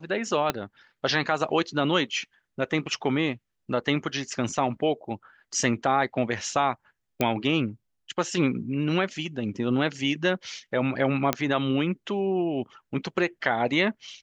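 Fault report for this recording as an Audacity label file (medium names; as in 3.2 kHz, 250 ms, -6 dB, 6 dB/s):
0.500000	0.500000	pop -9 dBFS
7.210000	7.210000	pop -10 dBFS
11.330000	11.330000	pop -7 dBFS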